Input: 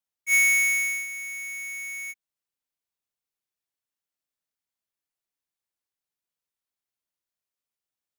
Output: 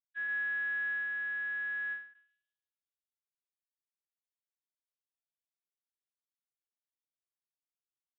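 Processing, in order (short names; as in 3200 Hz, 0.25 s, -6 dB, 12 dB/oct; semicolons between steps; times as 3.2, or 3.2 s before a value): HPF 150 Hz 6 dB/oct; pre-echo 0.124 s -15 dB; limiter -25.5 dBFS, peak gain reduction 9.5 dB; sample leveller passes 3; darkening echo 0.146 s, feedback 57%, low-pass 1800 Hz, level -23 dB; low-pass opened by the level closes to 810 Hz, open at -26 dBFS; inverted band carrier 3900 Hz; ending taper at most 120 dB/s; gain -6.5 dB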